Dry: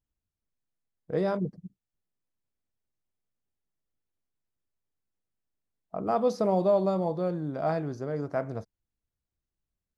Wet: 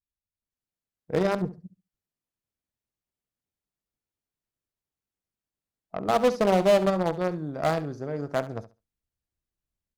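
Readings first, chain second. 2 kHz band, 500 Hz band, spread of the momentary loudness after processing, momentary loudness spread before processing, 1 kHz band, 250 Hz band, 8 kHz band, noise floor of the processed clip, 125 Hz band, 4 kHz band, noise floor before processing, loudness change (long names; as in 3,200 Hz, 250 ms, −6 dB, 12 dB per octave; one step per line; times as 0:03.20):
+9.5 dB, +3.0 dB, 13 LU, 11 LU, +4.0 dB, +2.0 dB, can't be measured, below −85 dBFS, +1.5 dB, +12.5 dB, below −85 dBFS, +3.0 dB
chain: automatic gain control gain up to 12 dB
harmonic generator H 3 −13 dB, 5 −23 dB, 7 −32 dB, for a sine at −9 dBFS
flutter between parallel walls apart 11.8 metres, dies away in 0.27 s
level −7 dB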